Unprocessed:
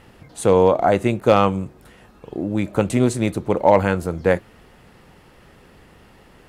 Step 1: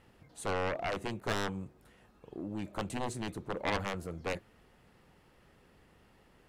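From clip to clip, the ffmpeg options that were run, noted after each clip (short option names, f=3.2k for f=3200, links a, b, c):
-af "aeval=exprs='0.75*(cos(1*acos(clip(val(0)/0.75,-1,1)))-cos(1*PI/2))+0.376*(cos(3*acos(clip(val(0)/0.75,-1,1)))-cos(3*PI/2))':c=same,asoftclip=type=tanh:threshold=-14dB,volume=-8dB"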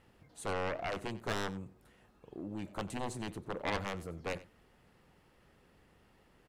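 -af "aecho=1:1:92:0.126,volume=-2.5dB"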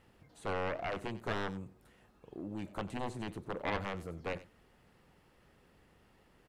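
-filter_complex "[0:a]acrossover=split=3800[a][b];[b]acompressor=threshold=-57dB:ratio=4:attack=1:release=60[c];[a][c]amix=inputs=2:normalize=0"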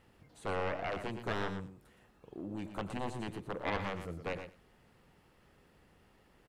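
-af "aecho=1:1:117:0.335"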